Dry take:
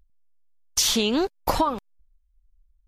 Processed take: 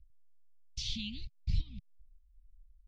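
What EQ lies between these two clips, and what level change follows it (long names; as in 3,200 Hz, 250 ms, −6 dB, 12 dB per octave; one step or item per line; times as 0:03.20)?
inverse Chebyshev band-stop filter 380–1,600 Hz, stop band 60 dB
transistor ladder low-pass 2,400 Hz, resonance 60%
+13.0 dB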